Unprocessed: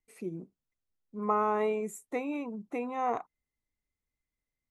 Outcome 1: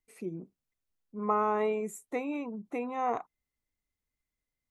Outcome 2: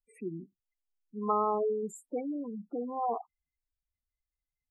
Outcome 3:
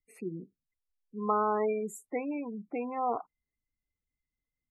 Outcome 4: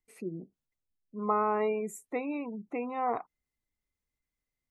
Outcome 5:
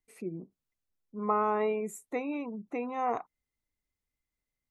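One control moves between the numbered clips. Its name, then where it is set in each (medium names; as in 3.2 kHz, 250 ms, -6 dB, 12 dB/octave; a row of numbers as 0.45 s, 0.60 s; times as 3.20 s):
spectral gate, under each frame's peak: -60 dB, -10 dB, -20 dB, -35 dB, -45 dB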